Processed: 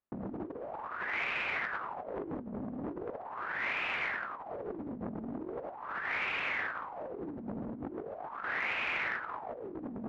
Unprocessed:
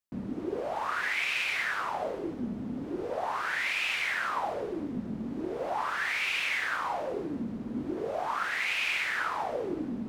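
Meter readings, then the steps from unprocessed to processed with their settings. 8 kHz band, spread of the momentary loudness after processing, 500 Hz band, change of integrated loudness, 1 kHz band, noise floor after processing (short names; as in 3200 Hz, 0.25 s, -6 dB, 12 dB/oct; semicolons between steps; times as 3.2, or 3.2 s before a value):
under -20 dB, 10 LU, -6.0 dB, -5.5 dB, -6.5 dB, -46 dBFS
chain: LPF 1400 Hz 12 dB/oct; negative-ratio compressor -38 dBFS, ratio -0.5; core saturation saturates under 850 Hz; gain +1.5 dB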